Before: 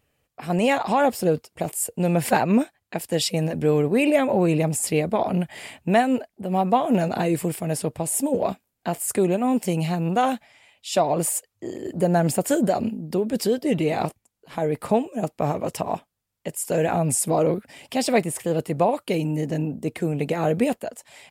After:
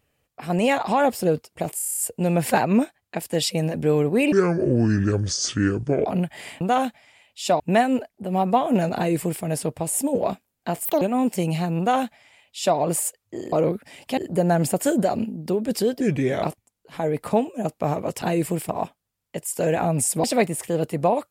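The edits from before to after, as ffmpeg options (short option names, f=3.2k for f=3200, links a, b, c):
-filter_complex "[0:a]asplit=21[a][b][c][d][e][f][g][h][i][j][k][l][m][n][o][p][q][r][s][t][u];[a]atrim=end=1.792[v];[b]atrim=start=1.758:end=1.792[w];[c]atrim=start=1.758:end=1.792[x];[d]atrim=start=1.758:end=1.792[y];[e]atrim=start=1.758:end=1.792[z];[f]atrim=start=1.758:end=1.792[aa];[g]atrim=start=1.758:end=1.792[ab];[h]atrim=start=1.758:end=4.114[ac];[i]atrim=start=4.11:end=5.24,asetpts=PTS-STARTPTS,asetrate=28665,aresample=44100,atrim=end_sample=76666,asetpts=PTS-STARTPTS[ad];[j]atrim=start=5.236:end=5.792[ae];[k]atrim=start=10.078:end=11.072[af];[l]atrim=start=5.788:end=9.044[ag];[m]atrim=start=9.04:end=9.31,asetpts=PTS-STARTPTS,asetrate=71883,aresample=44100[ah];[n]atrim=start=9.306:end=11.822[ai];[o]atrim=start=17.348:end=18.002[aj];[p]atrim=start=11.818:end=13.654[ak];[q]atrim=start=13.65:end=14.01,asetpts=PTS-STARTPTS,asetrate=37485,aresample=44100[al];[r]atrim=start=14.006:end=15.802[am];[s]atrim=start=7.148:end=7.622[an];[t]atrim=start=15.798:end=17.352[ao];[u]atrim=start=17.998[ap];[v][w]acrossfade=d=0.004:c1=hsin:c2=hsin[aq];[aq][x]acrossfade=d=0.004:c1=hsin:c2=hsin[ar];[ar][y]acrossfade=d=0.004:c1=hsin:c2=hsin[as];[as][z]acrossfade=d=0.004:c1=hsin:c2=hsin[at];[at][aa]acrossfade=d=0.004:c1=hsin:c2=hsin[au];[au][ab]acrossfade=d=0.004:c1=hsin:c2=hsin[av];[av][ac]acrossfade=d=0.004:c1=hsin:c2=hsin[aw];[aw][ad]acrossfade=d=0.004:c1=hsin:c2=hsin[ax];[ax][ae]acrossfade=d=0.004:c1=hsin:c2=hsin[ay];[ay][af]acrossfade=d=0.004:c1=hsin:c2=hsin[az];[az][ag]acrossfade=d=0.004:c1=hsin:c2=hsin[ba];[ba][ah]acrossfade=d=0.004:c1=hsin:c2=hsin[bb];[bb][ai]acrossfade=d=0.004:c1=hsin:c2=hsin[bc];[bc][aj]acrossfade=d=0.004:c1=hsin:c2=hsin[bd];[bd][ak]acrossfade=d=0.004:c1=hsin:c2=hsin[be];[be][al]acrossfade=d=0.004:c1=hsin:c2=hsin[bf];[bf][am]acrossfade=d=0.004:c1=hsin:c2=hsin[bg];[bg][an]acrossfade=d=0.004:c1=hsin:c2=hsin[bh];[bh][ao]acrossfade=d=0.004:c1=hsin:c2=hsin[bi];[bi][ap]acrossfade=d=0.004:c1=hsin:c2=hsin"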